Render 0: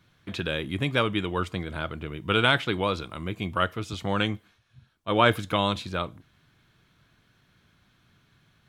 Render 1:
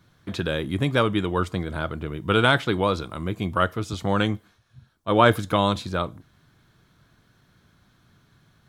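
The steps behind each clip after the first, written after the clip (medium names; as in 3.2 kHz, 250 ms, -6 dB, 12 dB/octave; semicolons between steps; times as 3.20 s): peaking EQ 2.6 kHz -7.5 dB 0.96 oct; trim +4.5 dB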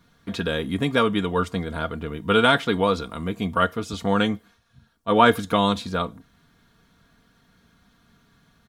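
comb 4.3 ms, depth 57%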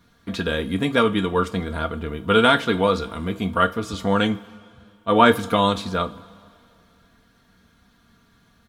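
reverberation, pre-delay 3 ms, DRR 8 dB; trim +1 dB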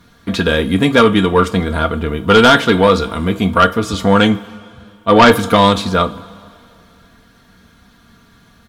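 sine folder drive 7 dB, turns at -1 dBFS; trim -1 dB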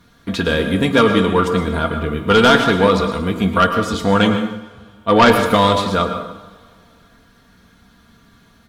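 plate-style reverb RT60 0.74 s, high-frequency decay 0.75×, pre-delay 95 ms, DRR 7 dB; trim -3.5 dB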